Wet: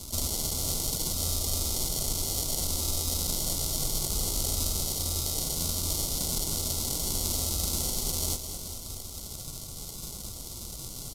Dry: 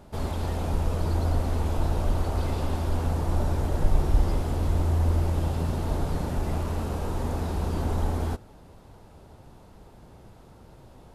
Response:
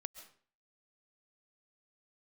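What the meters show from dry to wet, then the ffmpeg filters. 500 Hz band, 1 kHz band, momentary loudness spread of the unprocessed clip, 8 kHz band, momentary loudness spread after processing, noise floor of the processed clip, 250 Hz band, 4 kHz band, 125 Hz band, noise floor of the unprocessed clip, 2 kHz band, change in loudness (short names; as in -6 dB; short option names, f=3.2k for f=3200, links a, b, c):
-7.5 dB, -9.0 dB, 5 LU, +20.0 dB, 10 LU, -41 dBFS, -7.0 dB, +14.0 dB, -9.5 dB, -51 dBFS, -6.5 dB, -1.0 dB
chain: -filter_complex "[0:a]bass=f=250:g=7,treble=f=4k:g=13,acrossover=split=84|610[a][b][c];[a]acompressor=threshold=-38dB:ratio=4[d];[b]acompressor=threshold=-40dB:ratio=4[e];[c]acompressor=threshold=-41dB:ratio=4[f];[d][e][f]amix=inputs=3:normalize=0,flanger=delay=2.8:depth=4.9:regen=-37:speed=0.67:shape=sinusoidal,acrusher=samples=35:mix=1:aa=0.000001,aexciter=amount=10.7:drive=6.2:freq=3.7k,asuperstop=centerf=1700:order=20:qfactor=3.5,asplit=2[g][h];[h]aecho=0:1:211|422|633|844|1055|1266|1477:0.335|0.191|0.109|0.062|0.0354|0.0202|0.0115[i];[g][i]amix=inputs=2:normalize=0,aresample=32000,aresample=44100,volume=3.5dB"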